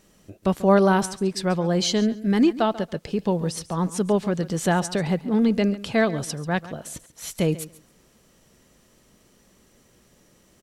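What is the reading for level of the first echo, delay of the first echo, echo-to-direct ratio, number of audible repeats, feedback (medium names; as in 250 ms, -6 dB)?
-17.0 dB, 139 ms, -17.0 dB, 2, 16%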